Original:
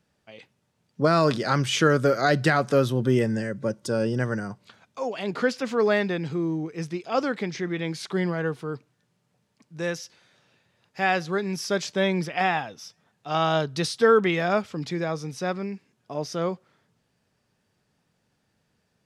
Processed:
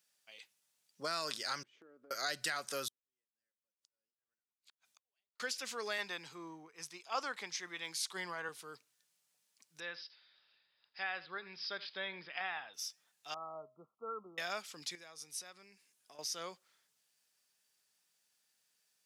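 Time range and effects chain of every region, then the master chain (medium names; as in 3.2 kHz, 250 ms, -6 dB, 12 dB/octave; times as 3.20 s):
1.63–2.11 s: ladder band-pass 340 Hz, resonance 40% + compression 12:1, threshold -35 dBFS
2.88–5.40 s: compression 12:1, threshold -35 dBFS + inverted gate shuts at -39 dBFS, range -40 dB + tremolo of two beating tones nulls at 3.5 Hz
5.98–8.49 s: peaking EQ 1 kHz +9.5 dB 0.79 oct + three bands expanded up and down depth 70%
9.80–12.74 s: low-pass that closes with the level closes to 2.6 kHz, closed at -23 dBFS + rippled Chebyshev low-pass 5.1 kHz, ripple 3 dB + delay 82 ms -18.5 dB
13.34–14.38 s: companding laws mixed up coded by A + brick-wall FIR low-pass 1.4 kHz + feedback comb 210 Hz, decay 0.33 s, harmonics odd
14.95–16.19 s: peaking EQ 9.8 kHz +5.5 dB 0.46 oct + compression 2.5:1, threshold -41 dBFS
whole clip: differentiator; compression 2:1, threshold -40 dBFS; trim +3.5 dB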